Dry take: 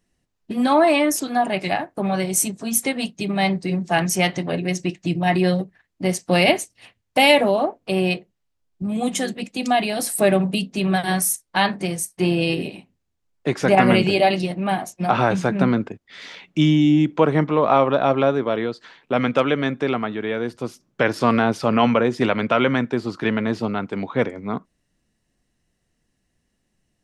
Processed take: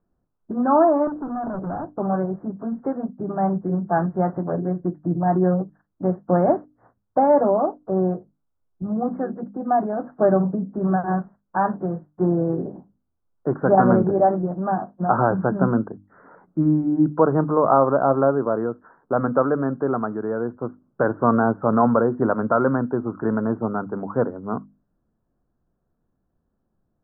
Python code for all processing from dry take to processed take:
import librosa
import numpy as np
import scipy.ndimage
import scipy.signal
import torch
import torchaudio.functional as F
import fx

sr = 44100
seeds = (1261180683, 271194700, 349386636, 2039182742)

y = fx.chain(x, sr, fx.lowpass(hz=1400.0, slope=12),
    fx.low_shelf(hz=230.0, db=12.0),
    fx.overload_stage(gain_db=25.5), at=(1.07, 1.97))
y = scipy.signal.sosfilt(scipy.signal.butter(12, 1500.0, 'lowpass', fs=sr, output='sos'), y)
y = fx.hum_notches(y, sr, base_hz=50, count=6)